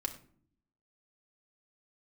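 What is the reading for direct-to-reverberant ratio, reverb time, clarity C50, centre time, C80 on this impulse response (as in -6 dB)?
2.0 dB, 0.55 s, 12.0 dB, 9 ms, 15.5 dB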